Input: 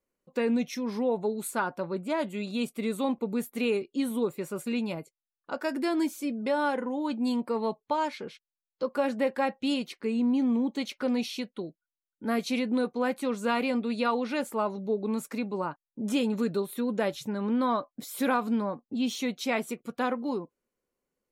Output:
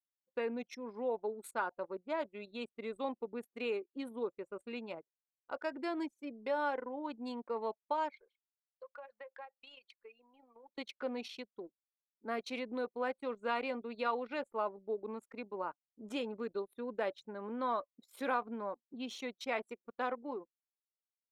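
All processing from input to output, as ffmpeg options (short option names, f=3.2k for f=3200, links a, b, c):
-filter_complex "[0:a]asettb=1/sr,asplit=3[a][b][c];[a]atrim=end=8.134[d];[b]atrim=start=8.13:end=10.78,asetpts=PTS-STARTPTS,afade=t=in:d=0.004:c=qsin,afade=t=out:st=2.646:d=0.004:c=qsin,highpass=760,acompressor=threshold=-37dB:ratio=5:attack=3.2:release=140:knee=1:detection=peak[e];[c]atrim=start=10.776[f];[d][e]acrossfade=d=0.004:c1=hsin:c2=qsin[g];[g][f]acrossfade=d=0.004:c1=qsin:c2=hsin,highpass=410,anlmdn=1,lowpass=f=3.1k:p=1,volume=-5.5dB"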